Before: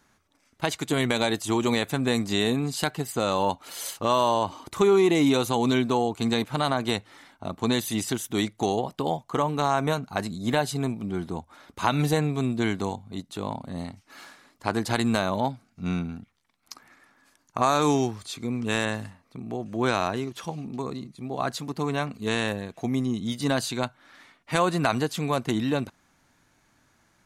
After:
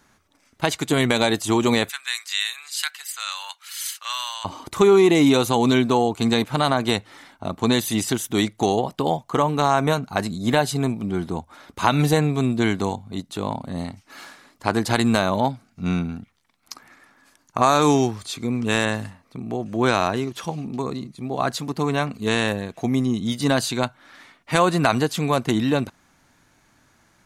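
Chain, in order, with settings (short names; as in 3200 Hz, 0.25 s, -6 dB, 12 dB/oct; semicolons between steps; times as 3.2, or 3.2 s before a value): 1.89–4.45 HPF 1500 Hz 24 dB/oct; gain +5 dB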